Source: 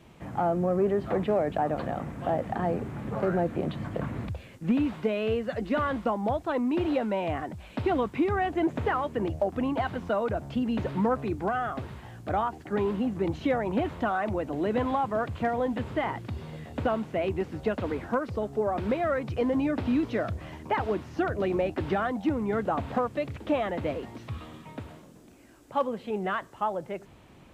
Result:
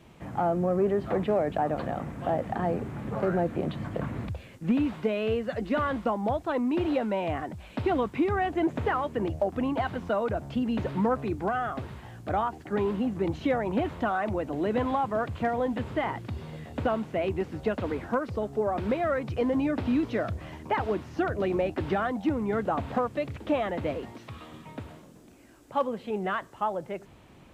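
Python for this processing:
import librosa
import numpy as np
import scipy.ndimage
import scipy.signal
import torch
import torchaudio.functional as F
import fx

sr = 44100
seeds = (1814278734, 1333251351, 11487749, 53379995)

y = fx.low_shelf(x, sr, hz=140.0, db=-11.5, at=(24.12, 24.52))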